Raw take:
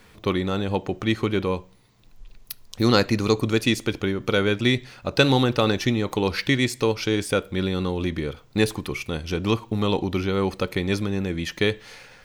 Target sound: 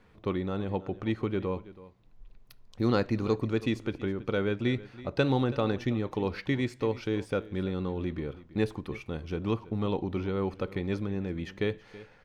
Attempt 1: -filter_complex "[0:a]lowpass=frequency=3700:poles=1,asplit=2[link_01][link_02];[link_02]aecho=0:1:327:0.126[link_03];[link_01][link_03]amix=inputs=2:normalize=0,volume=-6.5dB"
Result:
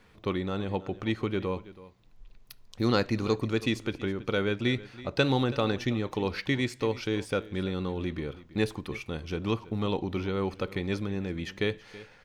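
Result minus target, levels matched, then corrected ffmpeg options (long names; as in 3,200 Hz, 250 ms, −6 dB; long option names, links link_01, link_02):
4,000 Hz band +5.5 dB
-filter_complex "[0:a]lowpass=frequency=1300:poles=1,asplit=2[link_01][link_02];[link_02]aecho=0:1:327:0.126[link_03];[link_01][link_03]amix=inputs=2:normalize=0,volume=-6.5dB"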